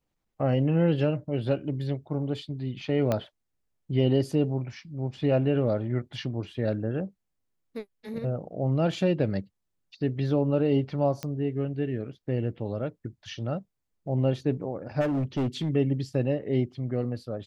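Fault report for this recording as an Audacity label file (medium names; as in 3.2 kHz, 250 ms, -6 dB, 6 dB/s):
3.120000	3.120000	pop -13 dBFS
11.230000	11.230000	pop -18 dBFS
15.000000	15.700000	clipped -23.5 dBFS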